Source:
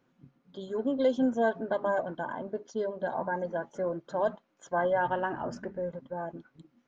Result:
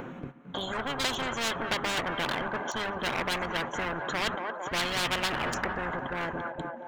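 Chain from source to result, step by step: Wiener smoothing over 9 samples; in parallel at -7 dB: soft clip -32.5 dBFS, distortion -7 dB; on the sum: low shelf 75 Hz -4.5 dB; gate -53 dBFS, range -14 dB; upward compressor, threshold -49 dBFS; band-limited delay 0.227 s, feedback 49%, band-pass 1300 Hz, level -15 dB; spectral compressor 10:1; gain +1.5 dB

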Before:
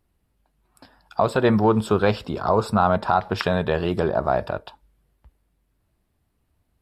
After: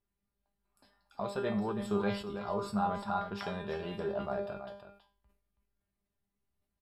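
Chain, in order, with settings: resonator 200 Hz, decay 0.36 s, harmonics all, mix 90%; on a send: echo 0.326 s -10 dB; on the sum: sustainer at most 110 dB/s; gain -3 dB

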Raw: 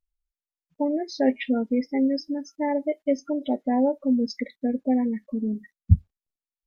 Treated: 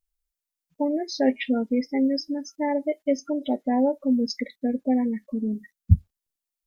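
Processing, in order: high shelf 4900 Hz +9 dB

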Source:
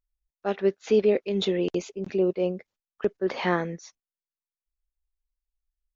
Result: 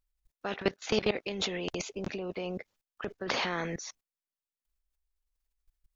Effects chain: level quantiser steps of 19 dB; spectral compressor 2:1

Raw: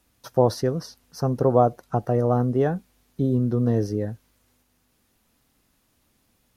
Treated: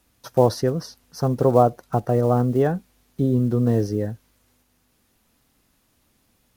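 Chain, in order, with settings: block floating point 7-bit; gain +2 dB

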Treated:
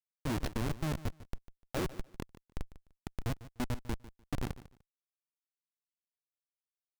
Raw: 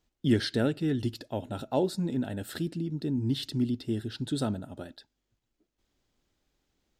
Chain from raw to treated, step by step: Schmitt trigger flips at -24 dBFS; feedback echo 0.149 s, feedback 20%, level -16.5 dB

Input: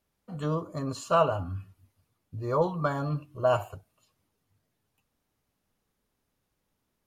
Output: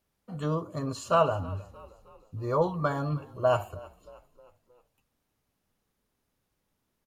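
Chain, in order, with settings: frequency-shifting echo 0.313 s, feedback 51%, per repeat -34 Hz, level -21 dB

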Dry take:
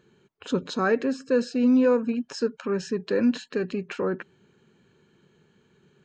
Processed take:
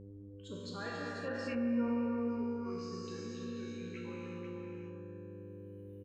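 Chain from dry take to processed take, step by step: per-bin expansion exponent 2; Doppler pass-by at 1.49, 19 m/s, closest 1.7 m; resonator 59 Hz, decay 1.4 s, harmonics all, mix 90%; reverse; upward compressor, threshold -51 dBFS; reverse; buzz 100 Hz, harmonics 5, -70 dBFS -4 dB/oct; echo 0.49 s -6.5 dB; non-linear reverb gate 0.43 s flat, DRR -2 dB; treble ducked by the level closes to 1100 Hz, closed at -37.5 dBFS; low shelf 200 Hz +4 dB; spectral compressor 2:1; gain -4.5 dB

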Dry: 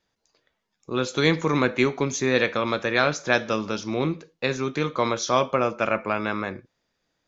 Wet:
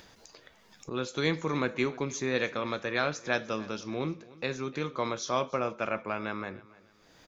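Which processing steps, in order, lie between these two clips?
upward compressor, threshold -26 dBFS; on a send: feedback echo 0.301 s, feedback 34%, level -20.5 dB; on the sum: gain -8 dB

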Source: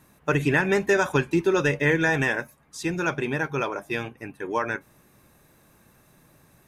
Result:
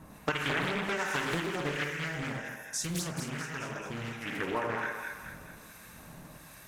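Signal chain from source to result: non-linear reverb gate 0.17 s flat, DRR 1 dB; harmonic tremolo 1.3 Hz, depth 70%, crossover 1200 Hz; compressor 12:1, threshold -36 dBFS, peak gain reduction 21.5 dB; bell 370 Hz -9.5 dB 0.25 oct; 1.84–4.26 spectral gain 270–5100 Hz -8 dB; 0.96–1.97 high shelf 10000 Hz +9 dB; thinning echo 0.215 s, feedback 52%, high-pass 680 Hz, level -3.5 dB; Doppler distortion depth 0.72 ms; gain +8 dB

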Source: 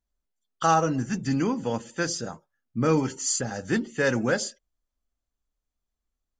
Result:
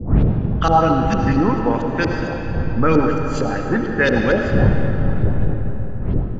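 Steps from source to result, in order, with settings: wind noise 120 Hz -27 dBFS; in parallel at -1 dB: limiter -15 dBFS, peak gain reduction 10 dB; on the sum: LFO low-pass saw up 4.4 Hz 360–4400 Hz; digital reverb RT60 3.9 s, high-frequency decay 0.7×, pre-delay 40 ms, DRR 2.5 dB

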